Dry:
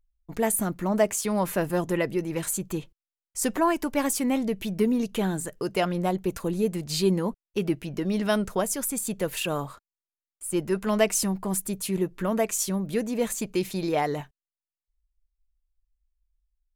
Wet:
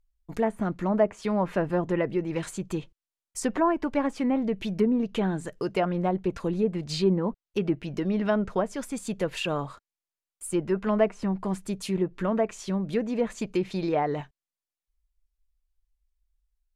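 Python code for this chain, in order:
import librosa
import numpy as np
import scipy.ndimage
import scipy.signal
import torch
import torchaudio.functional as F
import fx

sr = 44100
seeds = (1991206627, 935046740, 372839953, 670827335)

y = fx.env_lowpass_down(x, sr, base_hz=1400.0, full_db=-20.0)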